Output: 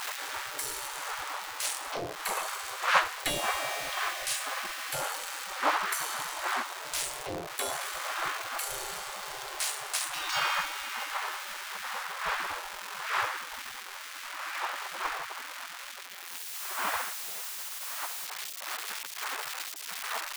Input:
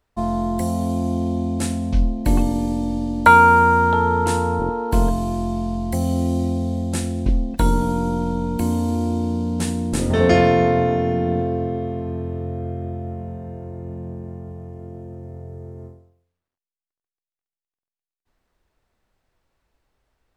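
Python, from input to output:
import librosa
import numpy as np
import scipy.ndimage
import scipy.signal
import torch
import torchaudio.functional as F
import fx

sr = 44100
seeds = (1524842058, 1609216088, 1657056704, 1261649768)

y = x + 0.5 * 10.0 ** (-26.0 / 20.0) * np.sign(x)
y = fx.dmg_wind(y, sr, seeds[0], corner_hz=270.0, level_db=-15.0)
y = fx.spec_gate(y, sr, threshold_db=-25, keep='weak')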